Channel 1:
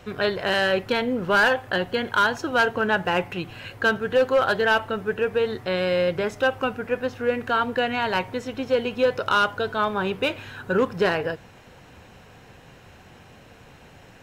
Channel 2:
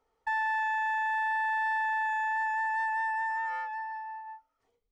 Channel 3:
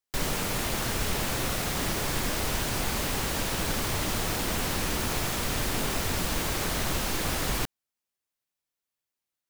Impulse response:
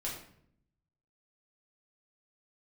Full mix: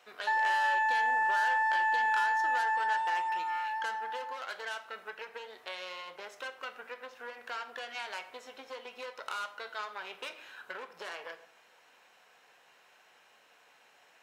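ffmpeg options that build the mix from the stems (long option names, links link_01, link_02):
-filter_complex "[0:a]aeval=exprs='0.251*(cos(1*acos(clip(val(0)/0.251,-1,1)))-cos(1*PI/2))+0.0562*(cos(4*acos(clip(val(0)/0.251,-1,1)))-cos(4*PI/2))':channel_layout=same,acompressor=threshold=-23dB:ratio=6,volume=-12dB,asplit=2[link_01][link_02];[link_02]volume=-6.5dB[link_03];[1:a]aecho=1:1:7:0.93,volume=-1.5dB[link_04];[3:a]atrim=start_sample=2205[link_05];[link_03][link_05]afir=irnorm=-1:irlink=0[link_06];[link_01][link_04][link_06]amix=inputs=3:normalize=0,highpass=760"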